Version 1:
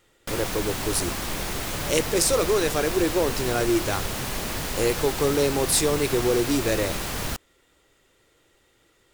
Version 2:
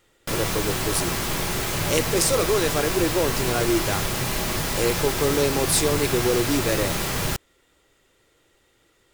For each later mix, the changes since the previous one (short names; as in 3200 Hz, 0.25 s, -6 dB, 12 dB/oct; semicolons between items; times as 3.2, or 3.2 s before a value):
reverb: on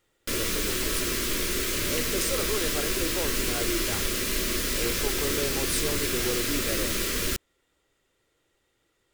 speech -9.5 dB; background: add fixed phaser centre 330 Hz, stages 4